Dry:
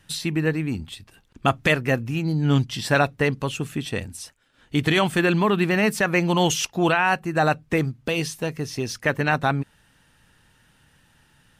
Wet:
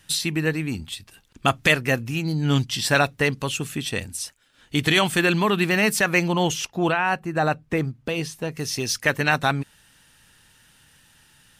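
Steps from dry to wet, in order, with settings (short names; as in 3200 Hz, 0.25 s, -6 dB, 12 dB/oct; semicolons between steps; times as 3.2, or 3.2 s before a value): high shelf 2300 Hz +9 dB, from 6.28 s -2.5 dB, from 8.57 s +11 dB; gain -1.5 dB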